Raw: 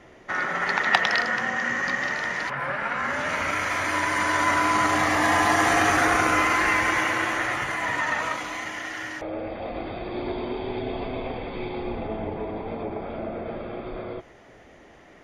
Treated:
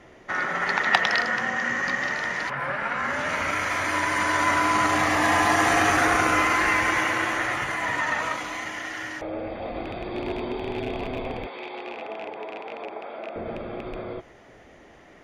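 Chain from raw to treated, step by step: rattle on loud lows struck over -33 dBFS, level -26 dBFS; 11.47–13.36 s: band-pass 530–5500 Hz

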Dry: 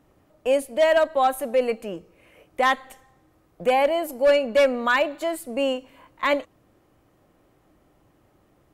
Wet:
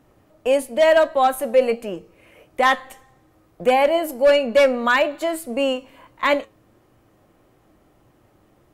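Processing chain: flange 1.6 Hz, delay 7.9 ms, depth 1.8 ms, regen +77%; trim +8 dB

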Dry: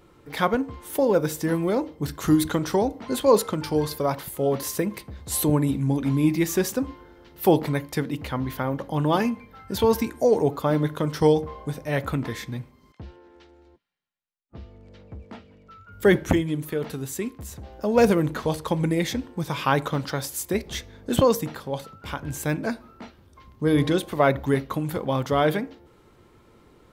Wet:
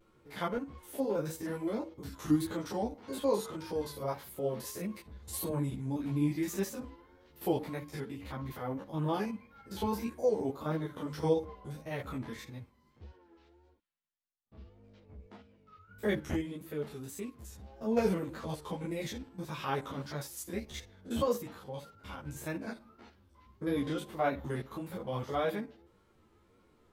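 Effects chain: spectrogram pixelated in time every 50 ms; vibrato 1.7 Hz 74 cents; three-phase chorus; trim -7 dB

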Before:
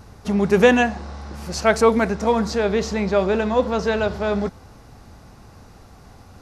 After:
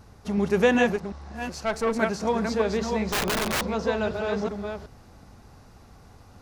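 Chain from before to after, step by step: chunks repeated in reverse 374 ms, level -4.5 dB; 0.96–1.99 s: valve stage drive 10 dB, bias 0.7; 3.07–3.63 s: integer overflow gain 14 dB; trim -6.5 dB

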